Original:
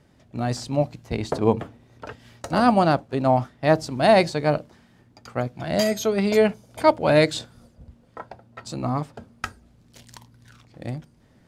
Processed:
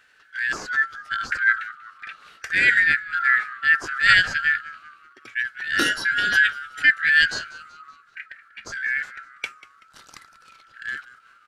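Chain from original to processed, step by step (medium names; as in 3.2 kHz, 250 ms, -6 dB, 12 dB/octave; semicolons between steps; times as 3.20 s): four frequency bands reordered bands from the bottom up 4123; frequency-shifting echo 190 ms, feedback 44%, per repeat -120 Hz, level -18.5 dB; formant shift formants -3 st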